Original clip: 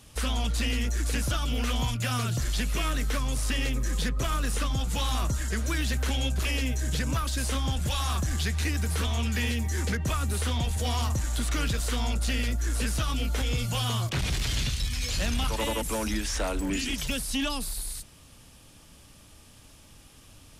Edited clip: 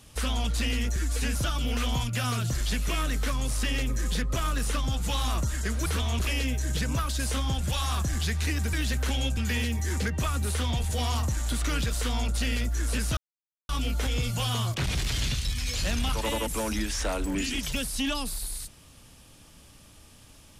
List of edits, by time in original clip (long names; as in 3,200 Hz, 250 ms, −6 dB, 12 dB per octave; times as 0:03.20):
0:00.96–0:01.22: time-stretch 1.5×
0:05.73–0:06.37: swap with 0:08.91–0:09.24
0:13.04: splice in silence 0.52 s